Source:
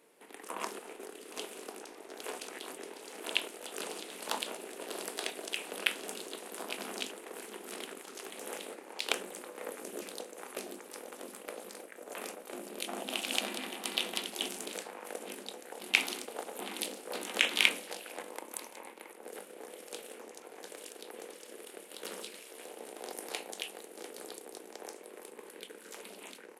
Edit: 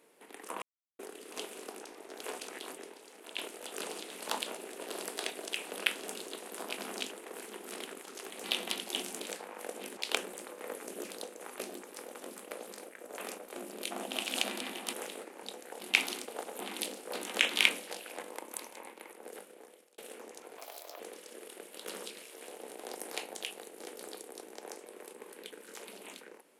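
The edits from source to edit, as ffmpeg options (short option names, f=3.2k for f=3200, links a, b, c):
-filter_complex "[0:a]asplit=11[a][b][c][d][e][f][g][h][i][j][k];[a]atrim=end=0.62,asetpts=PTS-STARTPTS,afade=t=out:st=0.616:d=0.004:c=hsin[l];[b]atrim=start=0.62:end=0.99,asetpts=PTS-STARTPTS,volume=0[m];[c]atrim=start=0.99:end=3.38,asetpts=PTS-STARTPTS,afade=t=in:d=0.004:c=hsin,afade=t=out:st=1.71:d=0.68:c=qua:silence=0.316228[n];[d]atrim=start=3.38:end=8.442,asetpts=PTS-STARTPTS,afade=t=in:d=0.004:c=hsin:silence=0.316228[o];[e]atrim=start=13.898:end=15.432[p];[f]atrim=start=8.938:end=13.902[q];[g]atrim=start=8.438:end=8.942[r];[h]atrim=start=15.428:end=19.98,asetpts=PTS-STARTPTS,afade=t=out:st=3.782:d=0.77[s];[i]atrim=start=19.98:end=20.584,asetpts=PTS-STARTPTS,afade=t=in:d=0.004:c=hsin[t];[j]atrim=start=20.58:end=21.17,asetpts=PTS-STARTPTS,asetrate=62181,aresample=44100,atrim=end_sample=18453,asetpts=PTS-STARTPTS[u];[k]atrim=start=21.166[v];[l][m][n][o]concat=n=4:v=0:a=1[w];[w][p]acrossfade=d=0.004:c1=hsin:c2=hsin[x];[x][q]acrossfade=d=0.004:c1=hsin:c2=hsin[y];[y][r]acrossfade=d=0.004:c1=hsin:c2=hsin[z];[s][t]concat=n=2:v=0:a=1[aa];[z][aa]acrossfade=d=0.004:c1=hsin:c2=hsin[ab];[ab][u]acrossfade=d=0.004:c1=hsin:c2=hsin[ac];[ac][v]acrossfade=d=0.004:c1=hsin:c2=hsin"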